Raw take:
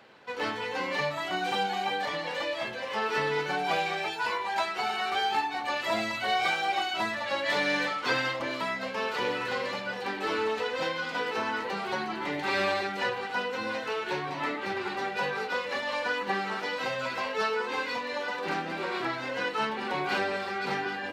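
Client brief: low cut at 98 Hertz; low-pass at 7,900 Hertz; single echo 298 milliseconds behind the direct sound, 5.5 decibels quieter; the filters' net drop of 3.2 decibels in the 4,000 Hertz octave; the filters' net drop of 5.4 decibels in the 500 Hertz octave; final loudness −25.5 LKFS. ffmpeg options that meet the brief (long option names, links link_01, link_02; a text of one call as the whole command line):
ffmpeg -i in.wav -af "highpass=98,lowpass=7900,equalizer=frequency=500:width_type=o:gain=-6.5,equalizer=frequency=4000:width_type=o:gain=-4,aecho=1:1:298:0.531,volume=5.5dB" out.wav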